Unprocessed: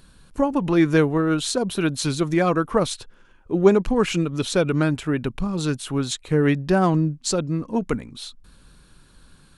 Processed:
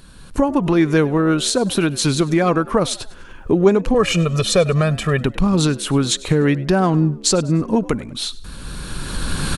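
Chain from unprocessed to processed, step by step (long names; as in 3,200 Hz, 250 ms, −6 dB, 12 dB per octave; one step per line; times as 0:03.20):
camcorder AGC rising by 18 dB per second
0:03.94–0:05.21: comb filter 1.7 ms, depth 84%
in parallel at +0.5 dB: downward compressor, threshold −27 dBFS, peak gain reduction 17 dB
on the sum: echo with shifted repeats 99 ms, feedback 41%, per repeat +65 Hz, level −20.5 dB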